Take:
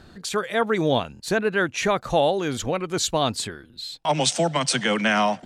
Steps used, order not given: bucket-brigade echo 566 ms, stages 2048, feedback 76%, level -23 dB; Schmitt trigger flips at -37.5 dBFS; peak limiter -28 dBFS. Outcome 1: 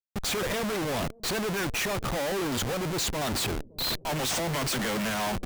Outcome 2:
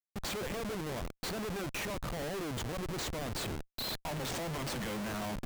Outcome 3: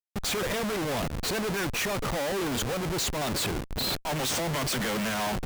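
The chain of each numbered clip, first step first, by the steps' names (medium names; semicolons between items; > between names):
Schmitt trigger > peak limiter > bucket-brigade echo; peak limiter > bucket-brigade echo > Schmitt trigger; bucket-brigade echo > Schmitt trigger > peak limiter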